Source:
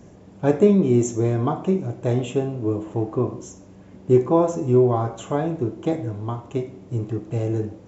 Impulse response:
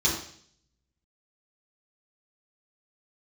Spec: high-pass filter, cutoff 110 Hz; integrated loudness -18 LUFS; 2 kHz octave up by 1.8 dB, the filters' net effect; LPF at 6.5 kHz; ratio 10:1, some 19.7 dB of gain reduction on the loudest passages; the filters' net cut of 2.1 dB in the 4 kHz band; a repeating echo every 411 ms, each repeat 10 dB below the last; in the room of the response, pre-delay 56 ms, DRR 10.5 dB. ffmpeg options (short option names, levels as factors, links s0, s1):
-filter_complex "[0:a]highpass=110,lowpass=6500,equalizer=f=2000:t=o:g=3.5,equalizer=f=4000:t=o:g=-4.5,acompressor=threshold=0.0282:ratio=10,aecho=1:1:411|822|1233|1644:0.316|0.101|0.0324|0.0104,asplit=2[s0][s1];[1:a]atrim=start_sample=2205,adelay=56[s2];[s1][s2]afir=irnorm=-1:irlink=0,volume=0.0794[s3];[s0][s3]amix=inputs=2:normalize=0,volume=6.68"